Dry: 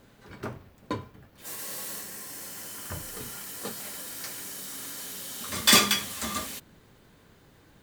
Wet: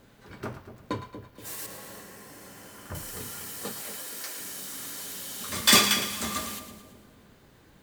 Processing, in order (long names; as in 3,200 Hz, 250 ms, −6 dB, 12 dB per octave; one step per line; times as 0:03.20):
0:01.66–0:02.95: high-shelf EQ 2,700 Hz −12 dB
0:03.81–0:04.40: high-pass filter 280 Hz 24 dB per octave
on a send: echo with a time of its own for lows and highs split 730 Hz, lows 238 ms, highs 111 ms, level −10.5 dB